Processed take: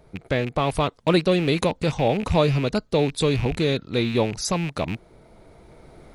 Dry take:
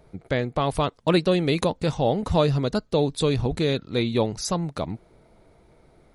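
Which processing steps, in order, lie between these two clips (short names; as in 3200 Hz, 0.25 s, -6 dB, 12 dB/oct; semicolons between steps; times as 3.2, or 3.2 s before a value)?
rattling part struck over -31 dBFS, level -25 dBFS; recorder AGC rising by 5.8 dB/s; gain +1 dB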